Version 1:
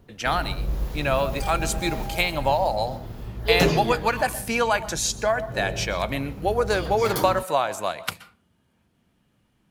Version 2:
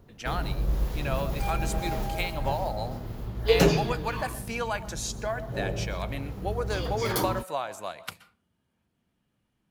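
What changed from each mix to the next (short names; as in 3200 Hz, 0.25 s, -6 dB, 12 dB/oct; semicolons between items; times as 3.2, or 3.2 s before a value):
speech -9.0 dB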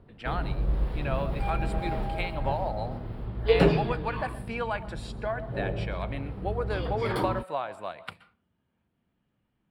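master: add running mean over 7 samples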